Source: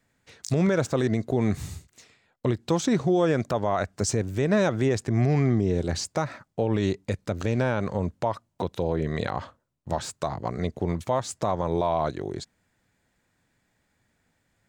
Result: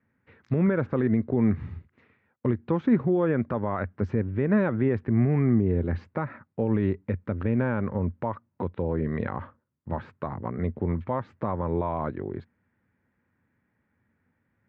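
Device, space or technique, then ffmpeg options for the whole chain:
bass cabinet: -af "highpass=70,equalizer=f=88:t=q:w=4:g=6,equalizer=f=230:t=q:w=4:g=6,equalizer=f=690:t=q:w=4:g=-8,lowpass=f=2100:w=0.5412,lowpass=f=2100:w=1.3066,volume=0.841"

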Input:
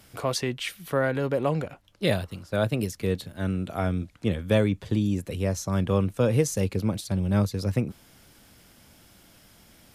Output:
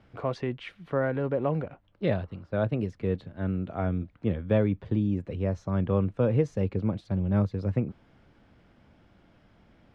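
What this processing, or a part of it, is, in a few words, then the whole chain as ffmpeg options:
phone in a pocket: -af "lowpass=3100,highshelf=f=2200:g=-11,volume=0.841"

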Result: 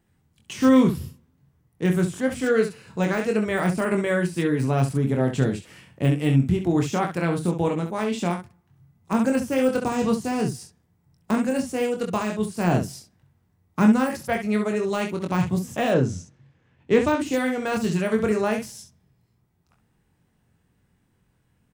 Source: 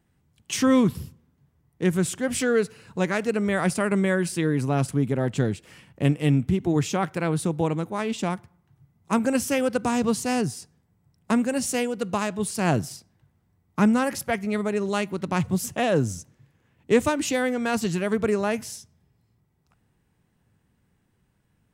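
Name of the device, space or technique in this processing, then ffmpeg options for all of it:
slapback doubling: -filter_complex "[0:a]asplit=3[s0][s1][s2];[s1]adelay=23,volume=0.562[s3];[s2]adelay=66,volume=0.376[s4];[s0][s3][s4]amix=inputs=3:normalize=0,asettb=1/sr,asplit=3[s5][s6][s7];[s5]atrim=end=15.944[s8];[s6]atrim=start=15.94:end=17.2,asetpts=PTS-STARTPTS,afade=t=in:d=0.004:c=qsin,afade=t=out:st=1.256:d=0.004:c=qsin,lowpass=5300[s9];[s7]atrim=start=17.196[s10];[s8][s9]acrossfade=d=0.004:c1=hsin:c2=qsin[s11];[s11][s10]acrossfade=d=0.004:c1=qsin:c2=hsin,deesser=0.75"

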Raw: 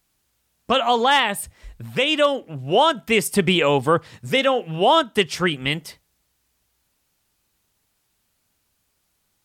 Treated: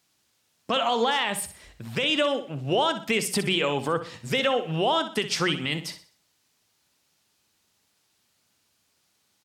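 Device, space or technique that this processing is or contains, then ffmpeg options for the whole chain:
broadcast voice chain: -af "highpass=110,highshelf=f=10000:g=-6.5,bandreject=f=60:t=h:w=6,bandreject=f=120:t=h:w=6,bandreject=f=180:t=h:w=6,deesser=0.4,acompressor=threshold=0.126:ratio=6,equalizer=f=5000:t=o:w=1.6:g=5,alimiter=limit=0.188:level=0:latency=1:release=29,aecho=1:1:62|124|186|248:0.266|0.101|0.0384|0.0146"

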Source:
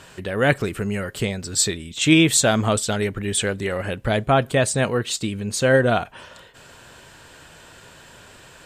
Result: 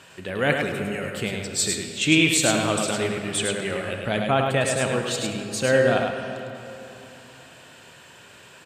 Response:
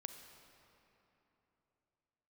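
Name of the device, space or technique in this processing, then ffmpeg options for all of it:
PA in a hall: -filter_complex "[0:a]highpass=110,equalizer=f=2600:t=o:w=0.61:g=4.5,aecho=1:1:104:0.596[s0];[1:a]atrim=start_sample=2205[s1];[s0][s1]afir=irnorm=-1:irlink=0"

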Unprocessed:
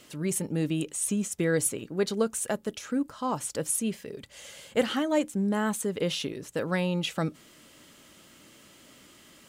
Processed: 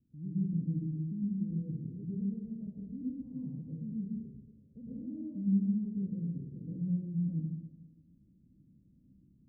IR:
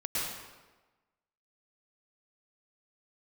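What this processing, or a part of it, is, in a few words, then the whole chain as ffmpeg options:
club heard from the street: -filter_complex "[0:a]alimiter=limit=0.0944:level=0:latency=1:release=46,lowpass=f=210:w=0.5412,lowpass=f=210:w=1.3066[s0];[1:a]atrim=start_sample=2205[s1];[s0][s1]afir=irnorm=-1:irlink=0,volume=0.531"

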